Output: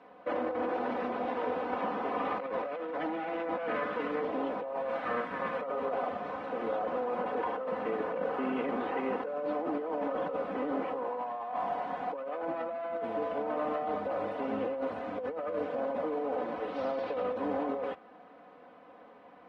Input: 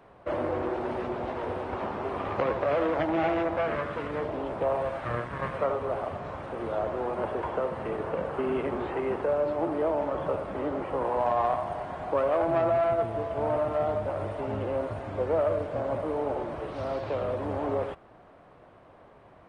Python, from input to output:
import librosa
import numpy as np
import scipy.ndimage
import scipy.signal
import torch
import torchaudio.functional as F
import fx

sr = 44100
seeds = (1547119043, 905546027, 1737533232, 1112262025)

y = fx.bandpass_edges(x, sr, low_hz=200.0, high_hz=4400.0)
y = y + 0.88 * np.pad(y, (int(4.0 * sr / 1000.0), 0))[:len(y)]
y = fx.over_compress(y, sr, threshold_db=-29.0, ratio=-1.0)
y = F.gain(torch.from_numpy(y), -4.0).numpy()